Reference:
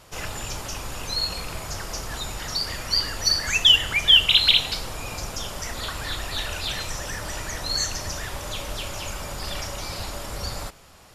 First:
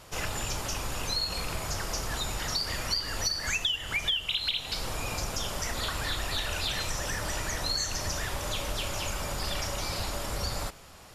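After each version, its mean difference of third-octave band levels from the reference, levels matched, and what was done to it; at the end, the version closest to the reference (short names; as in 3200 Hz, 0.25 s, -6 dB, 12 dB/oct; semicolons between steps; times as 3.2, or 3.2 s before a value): 5.5 dB: compressor 16:1, threshold -26 dBFS, peak gain reduction 17 dB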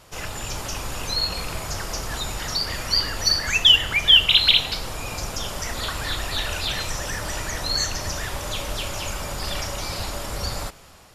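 1.5 dB: dynamic EQ 8300 Hz, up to -4 dB, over -35 dBFS, Q 0.89; AGC gain up to 3 dB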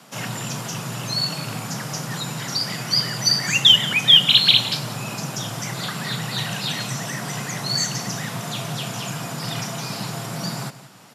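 2.5 dB: frequency shift +110 Hz; on a send: echo 0.175 s -16 dB; on the sum: gain +2.5 dB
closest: second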